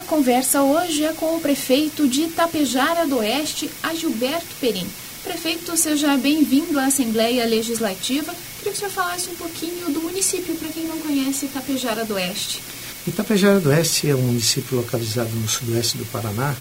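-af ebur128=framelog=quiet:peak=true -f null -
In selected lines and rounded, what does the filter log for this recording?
Integrated loudness:
  I:         -20.6 LUFS
  Threshold: -30.6 LUFS
Loudness range:
  LRA:         4.3 LU
  Threshold: -40.8 LUFS
  LRA low:   -23.5 LUFS
  LRA high:  -19.2 LUFS
True peak:
  Peak:       -2.5 dBFS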